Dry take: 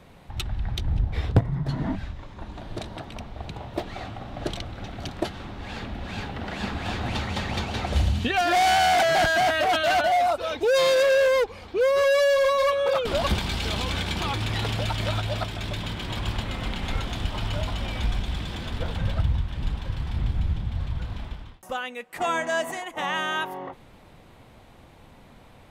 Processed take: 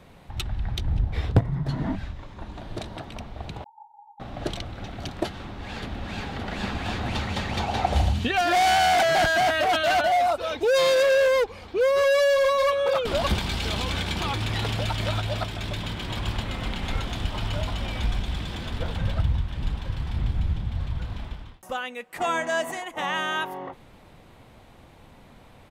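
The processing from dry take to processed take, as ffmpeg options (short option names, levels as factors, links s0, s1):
-filter_complex "[0:a]asettb=1/sr,asplit=3[s0][s1][s2];[s0]atrim=end=3.644[s3];[s1]atrim=start=3.64:end=4.2,asetpts=PTS-STARTPTS,afade=t=in:d=0.004:c=qsin,afade=t=out:st=0.556:d=0.004:c=qsin,asuperpass=centerf=870:order=20:qfactor=6.6[s4];[s2]atrim=start=4.196[s5];[s3][s4]acrossfade=d=0.004:c1=hsin:c2=qsin[s6];[s6][s5]acrossfade=d=0.004:c1=qsin:c2=hsin,asplit=2[s7][s8];[s8]afade=t=in:st=5.25:d=0.01,afade=t=out:st=6.28:d=0.01,aecho=0:1:570|1140|1710|2280|2850|3420|3990:0.530884|0.291986|0.160593|0.0883259|0.0485792|0.0267186|0.0146952[s9];[s7][s9]amix=inputs=2:normalize=0,asettb=1/sr,asplit=3[s10][s11][s12];[s10]atrim=end=7.594[s13];[s11]atrim=start=7.59:end=8.13,asetpts=PTS-STARTPTS,afade=t=in:d=0.004:c=qsin,afade=t=out:st=0.536:d=0.004:c=qsin,equalizer=f=770:t=o:w=0.55:g=10.5[s14];[s12]atrim=start=8.126[s15];[s13][s14]acrossfade=d=0.004:c1=hsin:c2=qsin[s16];[s16][s15]acrossfade=d=0.004:c1=qsin:c2=hsin"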